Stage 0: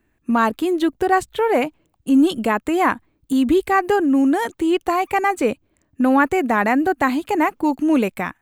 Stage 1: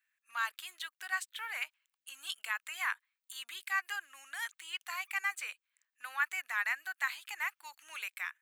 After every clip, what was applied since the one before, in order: high-pass 1.5 kHz 24 dB/octave; trim -8 dB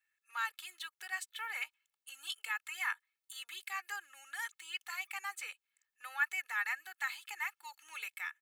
comb 2.3 ms, depth 82%; trim -4 dB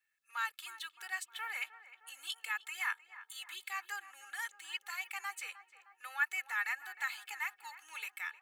filtered feedback delay 309 ms, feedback 67%, low-pass 1.6 kHz, level -13 dB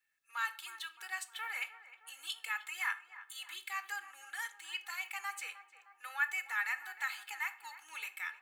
reverberation, pre-delay 6 ms, DRR 9.5 dB

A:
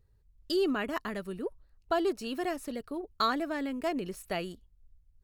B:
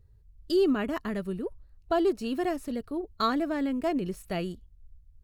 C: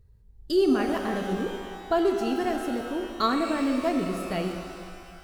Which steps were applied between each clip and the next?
bass shelf 390 Hz +5.5 dB; harmonic-percussive split percussive -4 dB; peaking EQ 87 Hz +4.5 dB 1.5 oct; trim +1.5 dB
pitch-shifted reverb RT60 2.1 s, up +12 st, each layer -8 dB, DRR 4.5 dB; trim +1.5 dB

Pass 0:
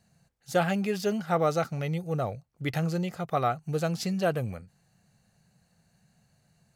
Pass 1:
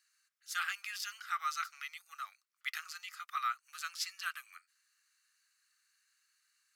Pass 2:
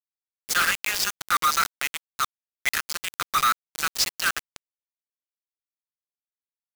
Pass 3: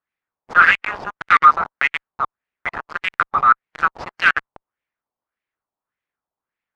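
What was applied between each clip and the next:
Chebyshev high-pass 1.2 kHz, order 5; peaking EQ 5.2 kHz +3 dB 0.28 oct; trim -1.5 dB
companded quantiser 2-bit; trim +7.5 dB
Chebyshev shaper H 5 -8 dB, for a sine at -17 dBFS; LFO low-pass sine 1.7 Hz 850–2200 Hz; harmonic-percussive split percussive +4 dB; trim +1 dB

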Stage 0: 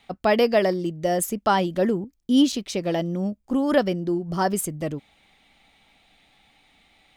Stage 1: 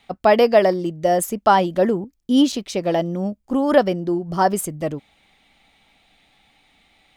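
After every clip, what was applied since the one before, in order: dynamic bell 780 Hz, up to +6 dB, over -35 dBFS, Q 0.81; trim +1 dB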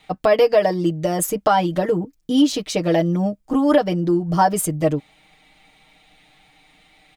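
compression 5:1, threshold -17 dBFS, peak gain reduction 9 dB; comb 6.5 ms, depth 85%; trim +2 dB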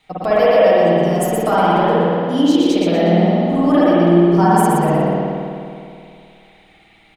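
on a send: frequency-shifting echo 120 ms, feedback 33%, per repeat +44 Hz, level -4.5 dB; on the sum: spring tank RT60 2.4 s, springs 52 ms, chirp 75 ms, DRR -7.5 dB; trim -5 dB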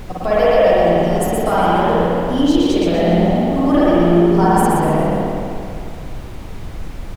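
on a send: frequency-shifting echo 139 ms, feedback 47%, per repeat +54 Hz, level -11 dB; on the sum: added noise brown -25 dBFS; trim -1 dB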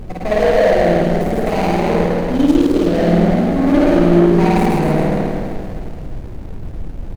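median filter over 41 samples; trim +2 dB

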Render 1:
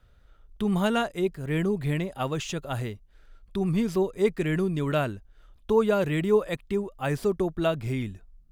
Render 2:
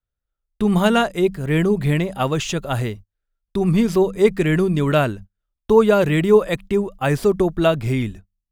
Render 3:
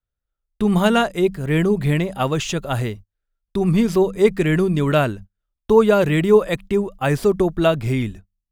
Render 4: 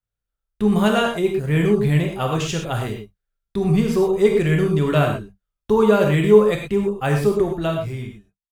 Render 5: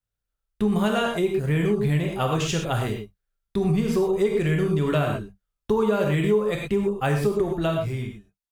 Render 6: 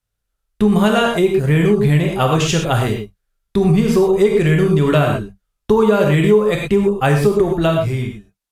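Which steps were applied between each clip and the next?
de-hum 96.63 Hz, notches 2; gate -42 dBFS, range -35 dB; trim +8.5 dB
no audible change
fade out at the end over 1.34 s; gated-style reverb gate 140 ms flat, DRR 1 dB; trim -3.5 dB
compression 4:1, threshold -19 dBFS, peak gain reduction 11 dB
trim +8.5 dB; Vorbis 128 kbps 32 kHz

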